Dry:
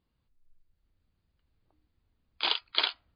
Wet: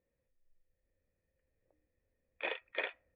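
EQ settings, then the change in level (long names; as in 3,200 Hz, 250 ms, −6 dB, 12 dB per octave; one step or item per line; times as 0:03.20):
formant resonators in series e
+11.0 dB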